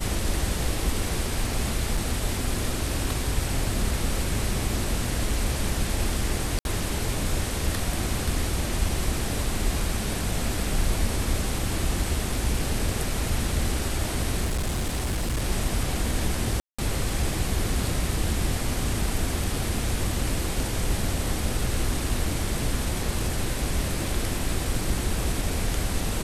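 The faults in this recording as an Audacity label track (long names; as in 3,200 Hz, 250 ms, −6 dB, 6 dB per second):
1.970000	1.970000	drop-out 4.4 ms
6.590000	6.650000	drop-out 61 ms
14.440000	15.430000	clipping −22.5 dBFS
16.600000	16.790000	drop-out 185 ms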